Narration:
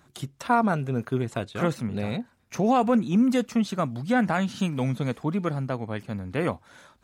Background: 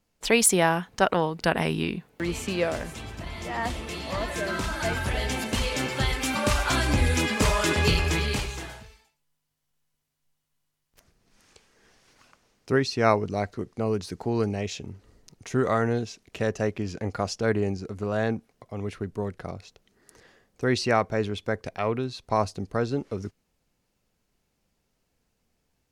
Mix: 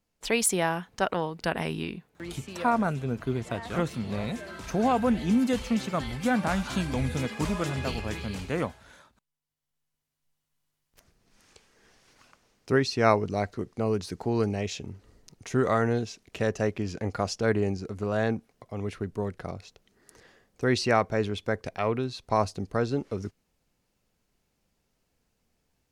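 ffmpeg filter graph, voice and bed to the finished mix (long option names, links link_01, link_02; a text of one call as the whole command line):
ffmpeg -i stem1.wav -i stem2.wav -filter_complex "[0:a]adelay=2150,volume=-3dB[link_01];[1:a]volume=6.5dB,afade=type=out:start_time=1.77:duration=0.61:silence=0.446684,afade=type=in:start_time=9.33:duration=1.45:silence=0.266073[link_02];[link_01][link_02]amix=inputs=2:normalize=0" out.wav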